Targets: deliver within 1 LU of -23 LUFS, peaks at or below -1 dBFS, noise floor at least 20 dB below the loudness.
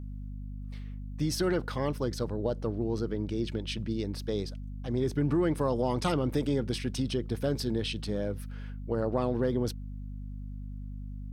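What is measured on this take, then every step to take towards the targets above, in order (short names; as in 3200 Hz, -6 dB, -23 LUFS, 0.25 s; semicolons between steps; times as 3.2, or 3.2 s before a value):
hum 50 Hz; harmonics up to 250 Hz; hum level -36 dBFS; loudness -31.5 LUFS; peak -16.0 dBFS; loudness target -23.0 LUFS
-> de-hum 50 Hz, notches 5; gain +8.5 dB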